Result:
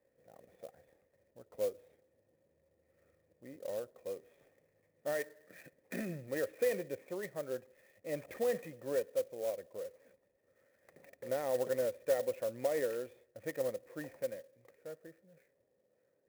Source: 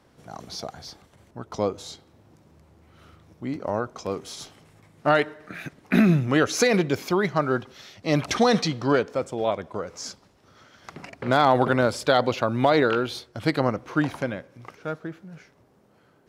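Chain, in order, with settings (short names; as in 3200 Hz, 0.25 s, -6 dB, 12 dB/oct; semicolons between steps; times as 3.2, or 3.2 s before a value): vocal tract filter e; clock jitter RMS 0.039 ms; gain -5 dB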